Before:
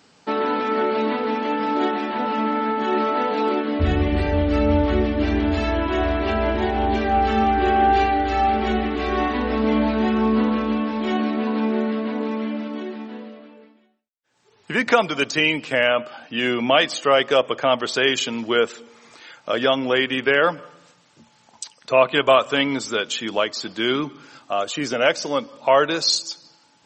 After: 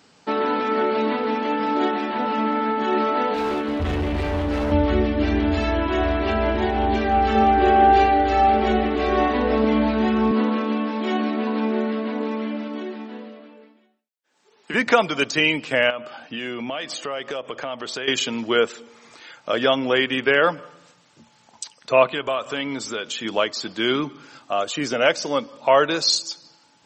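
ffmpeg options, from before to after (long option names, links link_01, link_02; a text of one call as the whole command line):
ffmpeg -i in.wav -filter_complex "[0:a]asettb=1/sr,asplit=3[link_01][link_02][link_03];[link_01]atrim=end=3.344[link_04];[link_02]atrim=start=3.34:end=4.72,asetpts=PTS-STARTPTS,afade=type=in:duration=0.004:curve=qsin,afade=type=out:start_time=1.376:duration=0.004:curve=qsin,asoftclip=type=hard:threshold=-20.5dB[link_05];[link_03]atrim=start=4.716[link_06];[link_04][link_05]acrossfade=duration=0.004:curve1=hsin:curve2=qsin[link_07];[link_07][link_06]acrossfade=duration=0.004:curve1=qsin:curve2=hsin,asettb=1/sr,asplit=3[link_08][link_09][link_10];[link_08]atrim=end=7.354[link_11];[link_09]atrim=start=7.35:end=9.65,asetpts=PTS-STARTPTS,afade=type=in:duration=0.004:curve=qsin,afade=type=out:start_time=2.296:duration=0.004:curve=qsin,equalizer=frequency=550:width_type=o:width=0.82:gain=6.5[link_12];[link_10]atrim=start=9.646[link_13];[link_11][link_12]acrossfade=duration=0.004:curve1=hsin:curve2=qsin[link_14];[link_14][link_13]acrossfade=duration=0.004:curve1=qsin:curve2=hsin,asettb=1/sr,asplit=3[link_15][link_16][link_17];[link_15]atrim=end=10.314[link_18];[link_16]atrim=start=10.31:end=14.74,asetpts=PTS-STARTPTS,afade=type=in:duration=0.004:curve=qsin,afade=type=out:start_time=4.426:duration=0.004:curve=qsin,highpass=frequency=200:width=0.5412,highpass=frequency=200:width=1.3066[link_19];[link_17]atrim=start=14.736[link_20];[link_18][link_19]acrossfade=duration=0.004:curve1=hsin:curve2=qsin[link_21];[link_21][link_20]acrossfade=duration=0.004:curve1=qsin:curve2=hsin,asettb=1/sr,asplit=3[link_22][link_23][link_24];[link_22]atrim=end=15.904[link_25];[link_23]atrim=start=15.9:end=18.08,asetpts=PTS-STARTPTS,afade=type=in:duration=0.004:curve=qsin,afade=type=out:start_time=2.176:duration=0.004:curve=qsin,acompressor=threshold=-27dB:ratio=4:attack=3.2:release=140:knee=1:detection=peak[link_26];[link_24]atrim=start=18.076[link_27];[link_25][link_26]acrossfade=duration=0.004:curve1=hsin:curve2=qsin[link_28];[link_28][link_27]acrossfade=duration=0.004:curve1=qsin:curve2=hsin,asettb=1/sr,asplit=3[link_29][link_30][link_31];[link_29]atrim=end=22.134[link_32];[link_30]atrim=start=22.13:end=23.25,asetpts=PTS-STARTPTS,afade=type=in:duration=0.004:curve=qsin,afade=type=out:start_time=1.116:duration=0.004:curve=qsin,acompressor=threshold=-27dB:ratio=2:attack=3.2:release=140:knee=1:detection=peak[link_33];[link_31]atrim=start=23.246[link_34];[link_32][link_33]acrossfade=duration=0.004:curve1=hsin:curve2=qsin[link_35];[link_35][link_34]acrossfade=duration=0.004:curve1=qsin:curve2=hsin" out.wav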